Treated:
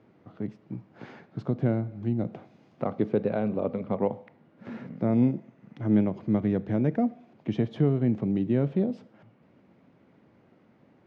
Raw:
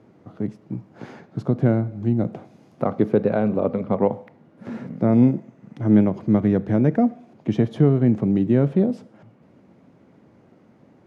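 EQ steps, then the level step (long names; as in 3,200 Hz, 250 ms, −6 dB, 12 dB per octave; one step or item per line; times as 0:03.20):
low-pass filter 3,000 Hz 12 dB per octave
dynamic equaliser 1,500 Hz, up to −4 dB, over −38 dBFS, Q 1.1
high-shelf EQ 2,300 Hz +11.5 dB
−7.0 dB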